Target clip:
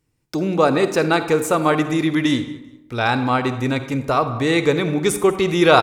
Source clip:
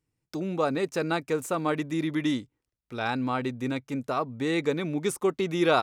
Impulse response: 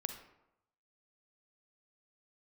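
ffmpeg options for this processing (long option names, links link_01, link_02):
-filter_complex "[0:a]asplit=2[link_01][link_02];[1:a]atrim=start_sample=2205,asetrate=37044,aresample=44100[link_03];[link_02][link_03]afir=irnorm=-1:irlink=0,volume=5.5dB[link_04];[link_01][link_04]amix=inputs=2:normalize=0,asubboost=boost=7:cutoff=78,asplit=2[link_05][link_06];[link_06]aecho=0:1:195|390:0.0794|0.0199[link_07];[link_05][link_07]amix=inputs=2:normalize=0,volume=1.5dB"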